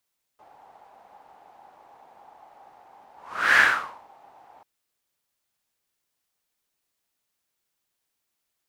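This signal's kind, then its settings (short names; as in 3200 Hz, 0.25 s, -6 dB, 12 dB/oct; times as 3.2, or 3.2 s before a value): whoosh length 4.24 s, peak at 3.18, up 0.45 s, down 0.53 s, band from 810 Hz, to 1700 Hz, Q 6.8, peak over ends 36 dB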